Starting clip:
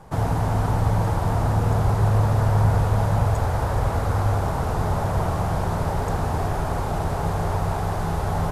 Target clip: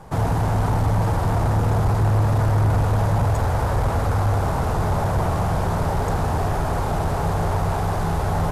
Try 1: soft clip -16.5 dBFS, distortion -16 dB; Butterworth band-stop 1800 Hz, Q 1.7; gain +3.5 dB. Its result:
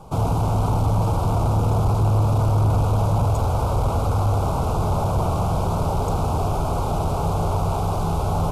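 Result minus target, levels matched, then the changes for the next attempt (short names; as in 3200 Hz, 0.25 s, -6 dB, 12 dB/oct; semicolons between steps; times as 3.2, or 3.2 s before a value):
2000 Hz band -9.5 dB
remove: Butterworth band-stop 1800 Hz, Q 1.7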